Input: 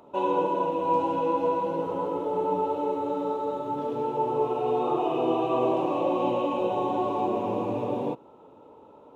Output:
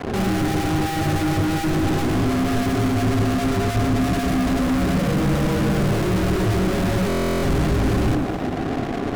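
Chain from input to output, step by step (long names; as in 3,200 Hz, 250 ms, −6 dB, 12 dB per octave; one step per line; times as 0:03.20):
low-pass filter 1,200 Hz 24 dB per octave
frequency shifter −180 Hz
leveller curve on the samples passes 5
brickwall limiter −18.5 dBFS, peak gain reduction 5 dB
on a send at −17 dB: convolution reverb RT60 0.55 s, pre-delay 12 ms
on the sum: leveller curve on the samples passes 3
low-shelf EQ 130 Hz −10.5 dB
in parallel at −8.5 dB: sine wavefolder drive 13 dB, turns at −12 dBFS
on the sum: low-shelf EQ 380 Hz +12 dB
notch filter 900 Hz, Q 14
feedback echo with a high-pass in the loop 107 ms, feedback 75%, level −12 dB
buffer that repeats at 0:07.08, samples 1,024, times 14
level −8.5 dB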